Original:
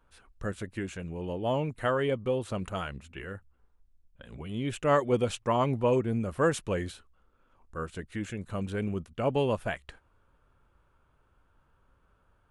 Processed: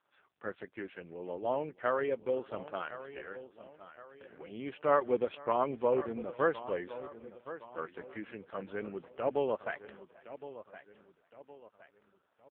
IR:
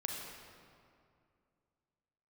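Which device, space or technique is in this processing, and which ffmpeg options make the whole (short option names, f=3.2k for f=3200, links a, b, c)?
satellite phone: -filter_complex "[0:a]asettb=1/sr,asplit=3[a][b][c];[a]atrim=end=3.184[d];[b]atrim=start=3.18:end=4.47,asetpts=PTS-STARTPTS,afade=t=in:d=0.004:c=qsin,afade=t=out:st=1.286:d=0.004:c=qsin,lowpass=f=9.3k:w=0.5412,lowpass=f=9.3k:w=1.3066[e];[c]atrim=start=4.466[f];[d][e]acrossfade=d=0.004:c1=hsin:c2=qsin[g];[g][f]acrossfade=d=0.004:c1=qsin:c2=hsin,asettb=1/sr,asplit=3[h][i][j];[h]atrim=end=5.034[k];[i]atrim=start=5.03:end=5.74,asetpts=PTS-STARTPTS,afade=t=in:d=0.004:c=qsin,afade=t=out:st=0.706:d=0.004:c=qsin,equalizer=f=4.1k:w=7.3:g=4.5[l];[j]atrim=start=5.736[m];[k][l]acrossfade=d=0.004:c1=hsin:c2=qsin[n];[n][m]acrossfade=d=0.004:c1=qsin:c2=hsin,highpass=350,lowpass=3k,aecho=1:1:484:0.0708,aecho=1:1:1065|2130|3195|4260:0.2|0.0858|0.0369|0.0159,volume=-1.5dB" -ar 8000 -c:a libopencore_amrnb -b:a 5150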